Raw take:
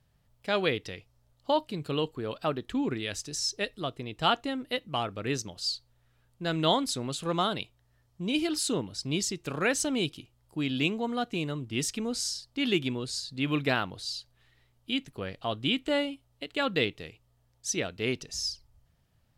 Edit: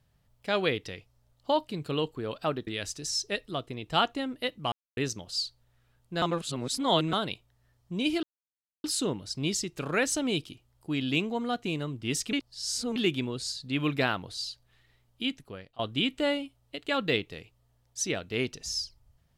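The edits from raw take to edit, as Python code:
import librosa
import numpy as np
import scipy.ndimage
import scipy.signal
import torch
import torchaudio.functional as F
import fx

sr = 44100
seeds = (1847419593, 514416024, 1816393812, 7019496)

y = fx.edit(x, sr, fx.cut(start_s=2.67, length_s=0.29),
    fx.silence(start_s=5.01, length_s=0.25),
    fx.reverse_span(start_s=6.51, length_s=0.91),
    fx.insert_silence(at_s=8.52, length_s=0.61),
    fx.reverse_span(start_s=12.01, length_s=0.63),
    fx.fade_out_to(start_s=14.91, length_s=0.56, floor_db=-21.0), tone=tone)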